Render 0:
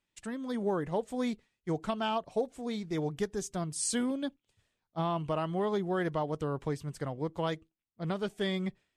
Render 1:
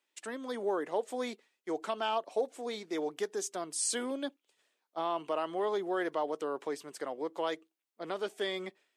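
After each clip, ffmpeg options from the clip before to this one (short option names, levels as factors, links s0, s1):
-filter_complex "[0:a]asplit=2[s0][s1];[s1]alimiter=level_in=1.78:limit=0.0631:level=0:latency=1:release=24,volume=0.562,volume=1.12[s2];[s0][s2]amix=inputs=2:normalize=0,highpass=f=320:w=0.5412,highpass=f=320:w=1.3066,volume=0.668"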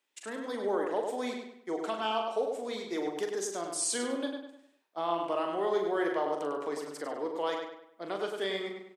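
-filter_complex "[0:a]asplit=2[s0][s1];[s1]adelay=41,volume=0.447[s2];[s0][s2]amix=inputs=2:normalize=0,asplit=2[s3][s4];[s4]adelay=100,lowpass=f=4100:p=1,volume=0.596,asplit=2[s5][s6];[s6]adelay=100,lowpass=f=4100:p=1,volume=0.41,asplit=2[s7][s8];[s8]adelay=100,lowpass=f=4100:p=1,volume=0.41,asplit=2[s9][s10];[s10]adelay=100,lowpass=f=4100:p=1,volume=0.41,asplit=2[s11][s12];[s12]adelay=100,lowpass=f=4100:p=1,volume=0.41[s13];[s3][s5][s7][s9][s11][s13]amix=inputs=6:normalize=0"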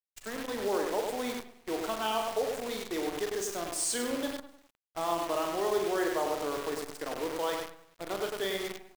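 -af "acrusher=bits=7:dc=4:mix=0:aa=0.000001"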